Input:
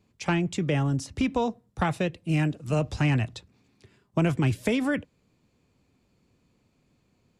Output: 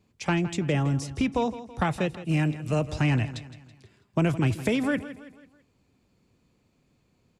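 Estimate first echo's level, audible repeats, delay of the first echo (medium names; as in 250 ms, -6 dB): -14.5 dB, 3, 164 ms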